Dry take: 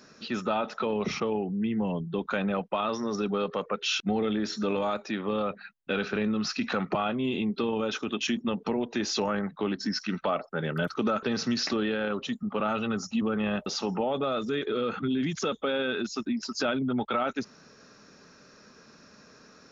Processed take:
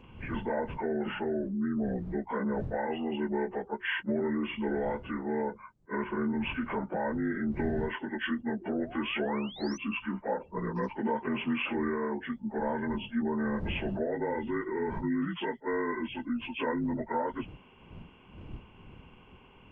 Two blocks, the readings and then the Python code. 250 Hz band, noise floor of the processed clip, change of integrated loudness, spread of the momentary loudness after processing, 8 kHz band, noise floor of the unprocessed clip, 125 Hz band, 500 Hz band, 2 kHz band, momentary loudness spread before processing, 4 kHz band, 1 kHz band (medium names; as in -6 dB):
-2.5 dB, -56 dBFS, -3.5 dB, 5 LU, no reading, -56 dBFS, -3.0 dB, -3.5 dB, -2.0 dB, 3 LU, -9.5 dB, -3.5 dB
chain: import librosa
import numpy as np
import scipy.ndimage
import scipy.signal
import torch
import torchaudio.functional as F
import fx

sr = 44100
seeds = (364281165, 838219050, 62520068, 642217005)

y = fx.partial_stretch(x, sr, pct=78)
y = fx.dmg_wind(y, sr, seeds[0], corner_hz=170.0, level_db=-45.0)
y = fx.spec_paint(y, sr, seeds[1], shape='rise', start_s=8.61, length_s=1.17, low_hz=330.0, high_hz=6200.0, level_db=-45.0)
y = fx.attack_slew(y, sr, db_per_s=440.0)
y = F.gain(torch.from_numpy(y), -2.0).numpy()